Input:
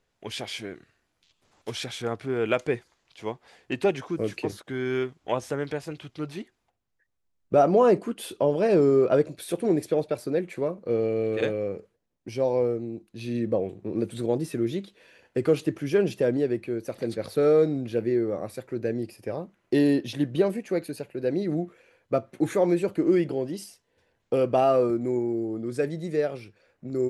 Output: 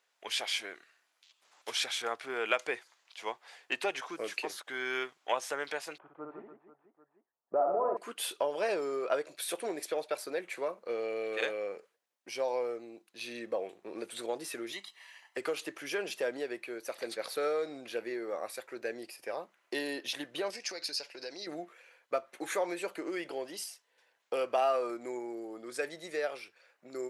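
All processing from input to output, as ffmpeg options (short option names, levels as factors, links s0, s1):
-filter_complex "[0:a]asettb=1/sr,asplit=3[s0][s1][s2];[s0]atrim=end=5.984[s3];[s1]atrim=start=5.98:end=7.97,asetpts=PTS-STARTPTS,afade=t=in:d=0.004:c=qsin,afade=t=out:st=1.986:d=0.004:c=qsin,lowpass=f=1100:w=0.5412,lowpass=f=1100:w=1.3066,aecho=1:1:60|150|285|487.5|791.2:0.631|0.398|0.251|0.158|0.1,atrim=end_sample=87759[s4];[s2]atrim=start=7.966[s5];[s3][s4]acrossfade=d=0.004:c1=hsin:c2=qsin[s6];[s6][s5]acrossfade=d=0.004:c1=qsin:c2=hsin,asettb=1/sr,asplit=3[s7][s8][s9];[s7]atrim=end=14.724[s10];[s8]atrim=start=14.72:end=15.37,asetpts=PTS-STARTPTS,afade=t=in:d=0.004:c=qsin,afade=t=out:st=0.646:d=0.004:c=qsin,highpass=f=600:p=1,aecho=1:1:1:0.82,atrim=end_sample=28665[s11];[s9]atrim=start=15.366[s12];[s10][s11]acrossfade=d=0.004:c1=hsin:c2=qsin[s13];[s13][s12]acrossfade=d=0.004:c1=qsin:c2=hsin,asettb=1/sr,asplit=3[s14][s15][s16];[s14]atrim=end=20.504[s17];[s15]atrim=start=20.5:end=21.47,asetpts=PTS-STARTPTS,afade=t=in:d=0.004:c=qsin,afade=t=out:st=0.966:d=0.004:c=qsin,lowpass=f=5200:t=q:w=7.8,aemphasis=mode=production:type=50fm,acompressor=threshold=0.0251:ratio=5:attack=3.2:release=140:knee=1:detection=peak[s18];[s16]atrim=start=21.466[s19];[s17][s18]acrossfade=d=0.004:c1=hsin:c2=qsin[s20];[s20][s19]acrossfade=d=0.004:c1=qsin:c2=hsin,acompressor=threshold=0.0891:ratio=6,highpass=830,volume=1.33"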